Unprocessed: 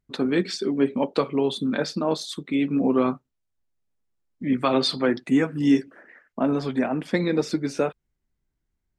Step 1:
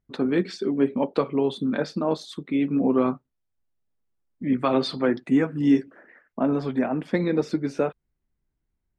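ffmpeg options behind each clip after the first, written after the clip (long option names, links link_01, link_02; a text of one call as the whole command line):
ffmpeg -i in.wav -af "highshelf=frequency=3200:gain=-11" out.wav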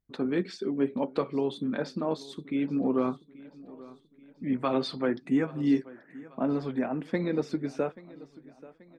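ffmpeg -i in.wav -af "aecho=1:1:833|1666|2499|3332:0.1|0.048|0.023|0.0111,volume=-5.5dB" out.wav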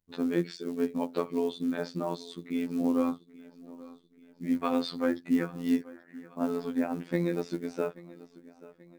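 ffmpeg -i in.wav -af "acrusher=bits=7:mode=log:mix=0:aa=0.000001,afftfilt=real='hypot(re,im)*cos(PI*b)':imag='0':win_size=2048:overlap=0.75,volume=2dB" out.wav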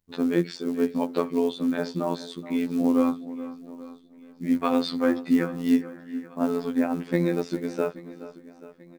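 ffmpeg -i in.wav -filter_complex "[0:a]asplit=2[link_01][link_02];[link_02]adelay=425.7,volume=-15dB,highshelf=frequency=4000:gain=-9.58[link_03];[link_01][link_03]amix=inputs=2:normalize=0,volume=5dB" out.wav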